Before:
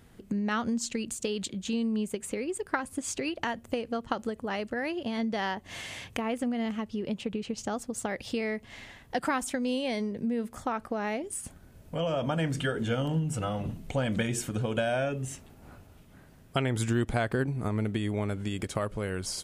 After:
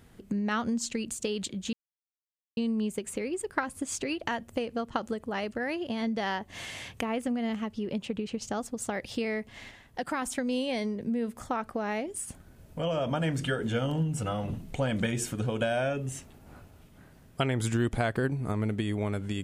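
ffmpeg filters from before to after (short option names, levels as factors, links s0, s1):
-filter_complex "[0:a]asplit=4[s0][s1][s2][s3];[s0]atrim=end=1.73,asetpts=PTS-STARTPTS,afade=t=out:st=1.726:d=0.004:c=hsin,apad=pad_dur=0.84[s4];[s1]atrim=start=1.73:end=8.872,asetpts=PTS-STARTPTS,afade=t=in:d=0.004:c=hsin[s5];[s2]atrim=start=8.868:end=9.382,asetpts=PTS-STARTPTS,volume=0.668[s6];[s3]atrim=start=9.378[s7];[s4][s5]concat=n=2:v=0:a=1[s8];[s8][s6]acrossfade=d=0.004:c1=hsin:c2=hsin[s9];[s9][s7]acrossfade=d=0.004:c1=hsin:c2=hsin"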